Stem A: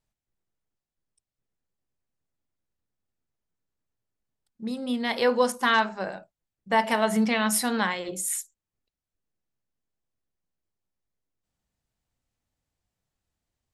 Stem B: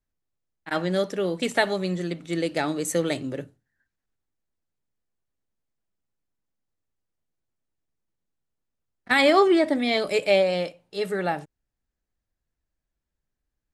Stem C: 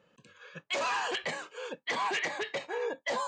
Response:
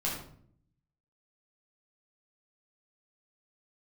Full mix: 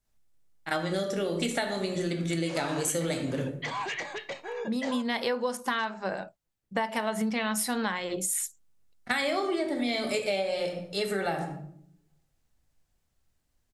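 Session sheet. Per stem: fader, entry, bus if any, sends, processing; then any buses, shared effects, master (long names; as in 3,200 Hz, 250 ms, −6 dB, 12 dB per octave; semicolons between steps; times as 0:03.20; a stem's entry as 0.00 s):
+3.0 dB, 0.05 s, no send, no processing
−1.5 dB, 0.00 s, muted 0:04.61–0:07.20, send −5 dB, parametric band 9,300 Hz +7 dB 2 octaves
−3.0 dB, 1.75 s, send −20.5 dB, no processing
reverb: on, RT60 0.60 s, pre-delay 8 ms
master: downward compressor 8 to 1, threshold −26 dBFS, peak gain reduction 16.5 dB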